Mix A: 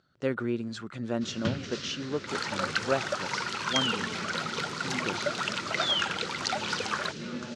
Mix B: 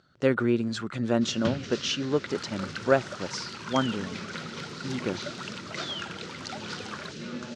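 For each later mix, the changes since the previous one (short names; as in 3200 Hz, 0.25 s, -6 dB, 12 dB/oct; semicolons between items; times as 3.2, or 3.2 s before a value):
speech +6.0 dB; second sound -8.5 dB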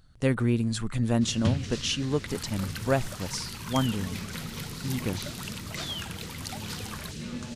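master: remove speaker cabinet 170–6300 Hz, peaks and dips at 370 Hz +6 dB, 570 Hz +5 dB, 1400 Hz +8 dB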